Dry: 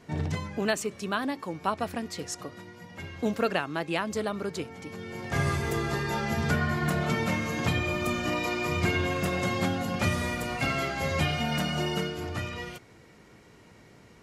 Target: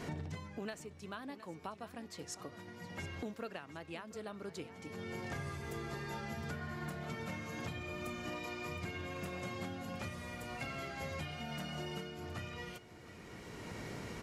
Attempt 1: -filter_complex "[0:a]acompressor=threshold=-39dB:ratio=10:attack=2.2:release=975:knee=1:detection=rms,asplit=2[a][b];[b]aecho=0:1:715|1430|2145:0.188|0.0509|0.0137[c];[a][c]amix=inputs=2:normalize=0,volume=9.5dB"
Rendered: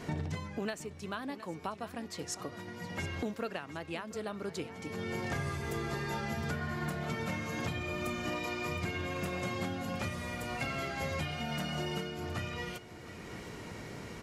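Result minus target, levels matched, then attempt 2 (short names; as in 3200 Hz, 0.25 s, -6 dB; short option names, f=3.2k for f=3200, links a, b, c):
compressor: peak gain reduction -6.5 dB
-filter_complex "[0:a]acompressor=threshold=-46dB:ratio=10:attack=2.2:release=975:knee=1:detection=rms,asplit=2[a][b];[b]aecho=0:1:715|1430|2145:0.188|0.0509|0.0137[c];[a][c]amix=inputs=2:normalize=0,volume=9.5dB"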